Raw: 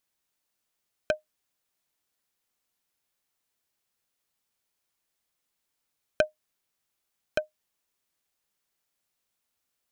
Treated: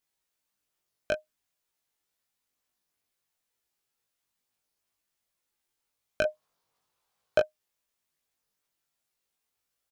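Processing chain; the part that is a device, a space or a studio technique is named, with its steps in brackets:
double-tracked vocal (double-tracking delay 20 ms −5 dB; chorus effect 0.53 Hz, delay 17.5 ms, depth 2.7 ms)
0:06.25–0:07.42: octave-band graphic EQ 125/500/1,000/4,000 Hz +8/+7/+11/+4 dB

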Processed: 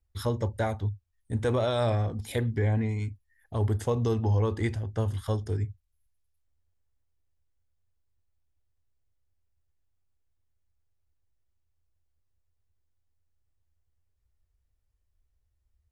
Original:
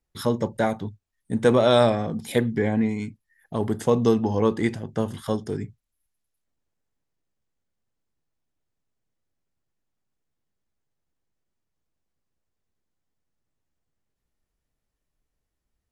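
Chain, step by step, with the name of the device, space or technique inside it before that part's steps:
car stereo with a boomy subwoofer (low shelf with overshoot 120 Hz +11 dB, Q 3; brickwall limiter −13 dBFS, peak gain reduction 6.5 dB)
level −5 dB

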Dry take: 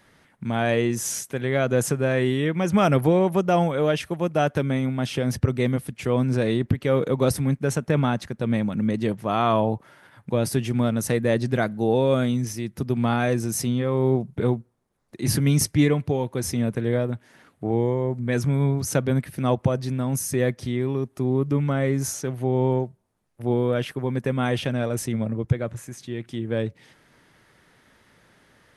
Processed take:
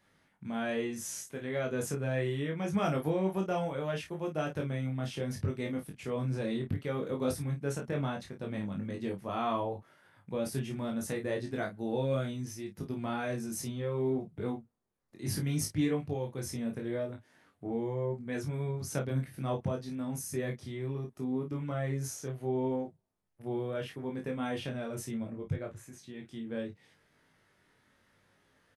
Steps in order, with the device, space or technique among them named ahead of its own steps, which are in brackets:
double-tracked vocal (double-tracking delay 31 ms −6.5 dB; chorus effect 0.7 Hz, delay 19.5 ms, depth 2.3 ms)
level −9 dB

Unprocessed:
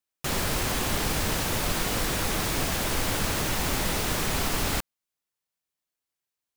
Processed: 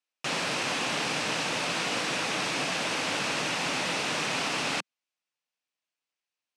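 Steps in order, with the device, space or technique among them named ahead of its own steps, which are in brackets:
television speaker (loudspeaker in its box 170–7,800 Hz, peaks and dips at 210 Hz −7 dB, 380 Hz −6 dB, 2,600 Hz +6 dB, 7,100 Hz −4 dB)

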